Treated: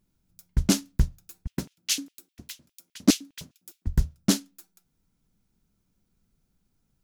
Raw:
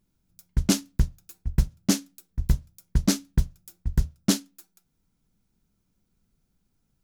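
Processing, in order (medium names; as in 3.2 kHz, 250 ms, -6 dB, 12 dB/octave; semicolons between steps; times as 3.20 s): 1.47–3.87 s: LFO high-pass square 4.9 Hz 270–2800 Hz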